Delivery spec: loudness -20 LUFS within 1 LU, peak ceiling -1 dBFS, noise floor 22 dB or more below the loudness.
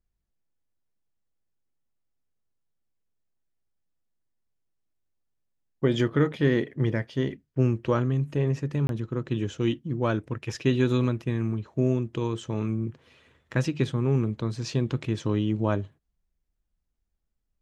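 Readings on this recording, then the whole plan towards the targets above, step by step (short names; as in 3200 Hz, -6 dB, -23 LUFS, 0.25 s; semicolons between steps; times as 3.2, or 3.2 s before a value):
dropouts 1; longest dropout 22 ms; loudness -27.5 LUFS; peak -9.5 dBFS; loudness target -20.0 LUFS
-> interpolate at 8.87, 22 ms; gain +7.5 dB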